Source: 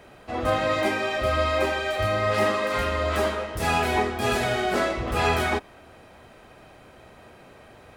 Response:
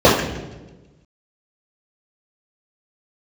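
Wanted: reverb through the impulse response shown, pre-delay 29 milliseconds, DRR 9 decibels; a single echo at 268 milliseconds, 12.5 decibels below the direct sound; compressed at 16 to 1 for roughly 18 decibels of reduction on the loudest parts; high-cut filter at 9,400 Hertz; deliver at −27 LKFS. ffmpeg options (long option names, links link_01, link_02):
-filter_complex "[0:a]lowpass=9400,acompressor=threshold=-37dB:ratio=16,aecho=1:1:268:0.237,asplit=2[link_01][link_02];[1:a]atrim=start_sample=2205,adelay=29[link_03];[link_02][link_03]afir=irnorm=-1:irlink=0,volume=-38.5dB[link_04];[link_01][link_04]amix=inputs=2:normalize=0,volume=14dB"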